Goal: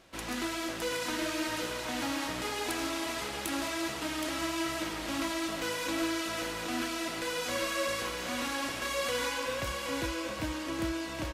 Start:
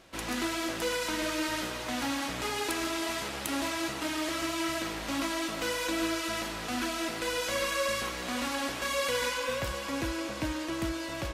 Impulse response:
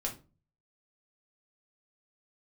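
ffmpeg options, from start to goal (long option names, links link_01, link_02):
-af "aecho=1:1:770:0.501,volume=-2.5dB"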